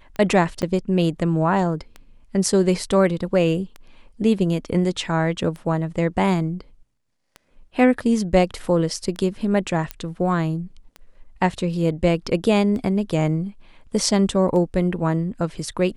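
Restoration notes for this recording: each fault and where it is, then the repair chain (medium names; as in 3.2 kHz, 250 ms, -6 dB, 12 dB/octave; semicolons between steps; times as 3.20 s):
tick 33 1/3 rpm -21 dBFS
0.62–0.63 s: dropout 8.1 ms
9.91 s: pop -11 dBFS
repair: de-click; interpolate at 0.62 s, 8.1 ms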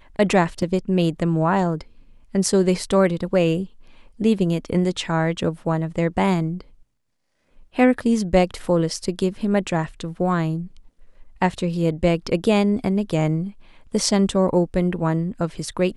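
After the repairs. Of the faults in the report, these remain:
nothing left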